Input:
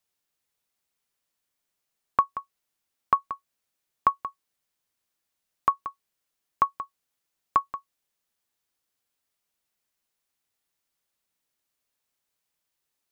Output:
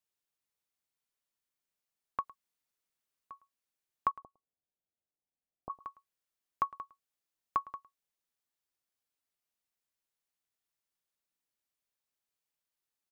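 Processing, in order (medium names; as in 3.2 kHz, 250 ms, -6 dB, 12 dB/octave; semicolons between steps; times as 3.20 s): 2.20–3.32 s: room tone, crossfade 0.10 s; 4.11–5.70 s: Chebyshev low-pass 770 Hz, order 4; delay 108 ms -20.5 dB; trim -9 dB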